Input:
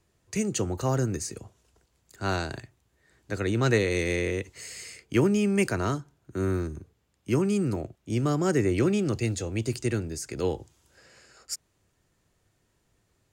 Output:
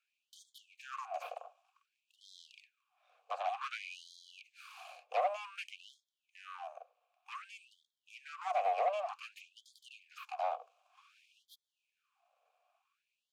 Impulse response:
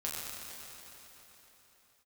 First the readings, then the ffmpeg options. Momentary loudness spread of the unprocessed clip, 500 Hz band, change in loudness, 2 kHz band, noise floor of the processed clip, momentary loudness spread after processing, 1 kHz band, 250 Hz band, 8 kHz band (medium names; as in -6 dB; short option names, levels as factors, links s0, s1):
14 LU, -13.5 dB, -11.5 dB, -13.5 dB, under -85 dBFS, 22 LU, 0.0 dB, under -40 dB, -25.0 dB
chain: -filter_complex "[0:a]asplit=2[s0][s1];[s1]acompressor=threshold=0.02:ratio=12,volume=1.26[s2];[s0][s2]amix=inputs=2:normalize=0,aeval=exprs='abs(val(0))':c=same,asplit=3[s3][s4][s5];[s3]bandpass=f=730:t=q:w=8,volume=1[s6];[s4]bandpass=f=1090:t=q:w=8,volume=0.501[s7];[s5]bandpass=f=2440:t=q:w=8,volume=0.355[s8];[s6][s7][s8]amix=inputs=3:normalize=0,asoftclip=type=tanh:threshold=0.0376,afftfilt=real='re*gte(b*sr/1024,430*pow(3200/430,0.5+0.5*sin(2*PI*0.54*pts/sr)))':imag='im*gte(b*sr/1024,430*pow(3200/430,0.5+0.5*sin(2*PI*0.54*pts/sr)))':win_size=1024:overlap=0.75,volume=1.78"